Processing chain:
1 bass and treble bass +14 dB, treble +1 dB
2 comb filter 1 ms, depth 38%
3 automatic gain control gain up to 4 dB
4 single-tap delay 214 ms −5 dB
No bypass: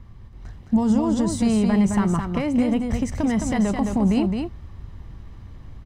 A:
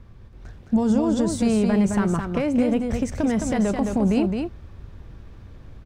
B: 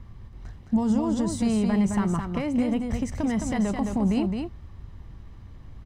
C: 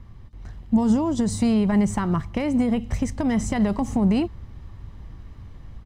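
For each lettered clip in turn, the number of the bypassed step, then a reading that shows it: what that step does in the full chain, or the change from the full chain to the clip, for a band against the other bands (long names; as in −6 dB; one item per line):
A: 2, 500 Hz band +4.0 dB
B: 3, change in momentary loudness spread +9 LU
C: 4, change in momentary loudness spread +9 LU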